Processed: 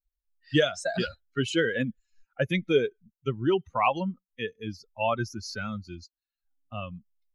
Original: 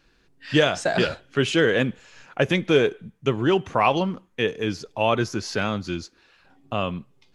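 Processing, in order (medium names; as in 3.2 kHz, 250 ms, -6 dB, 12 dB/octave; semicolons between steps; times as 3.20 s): expander on every frequency bin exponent 2; trim -1.5 dB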